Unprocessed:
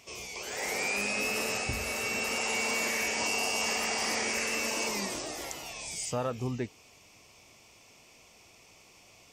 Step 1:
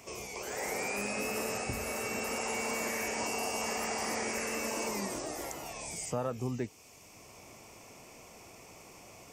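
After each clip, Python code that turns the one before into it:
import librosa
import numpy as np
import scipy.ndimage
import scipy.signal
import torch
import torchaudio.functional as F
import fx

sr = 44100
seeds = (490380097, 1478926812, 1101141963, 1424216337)

y = fx.peak_eq(x, sr, hz=3600.0, db=-11.0, octaves=1.5)
y = fx.band_squash(y, sr, depth_pct=40)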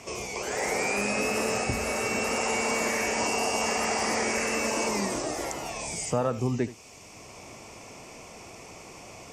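y = scipy.signal.sosfilt(scipy.signal.butter(2, 8700.0, 'lowpass', fs=sr, output='sos'), x)
y = y + 10.0 ** (-16.0 / 20.0) * np.pad(y, (int(77 * sr / 1000.0), 0))[:len(y)]
y = y * 10.0 ** (7.5 / 20.0)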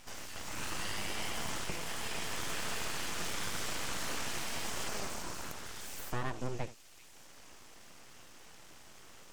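y = np.abs(x)
y = fx.echo_stepped(y, sr, ms=387, hz=3200.0, octaves=0.7, feedback_pct=70, wet_db=-11)
y = y * 10.0 ** (-7.5 / 20.0)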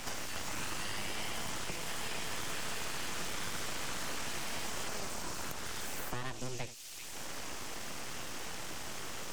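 y = fx.band_squash(x, sr, depth_pct=100)
y = y * 10.0 ** (-1.0 / 20.0)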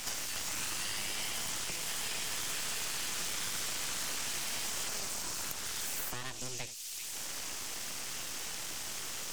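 y = fx.high_shelf(x, sr, hz=2400.0, db=12.0)
y = y * 10.0 ** (-4.5 / 20.0)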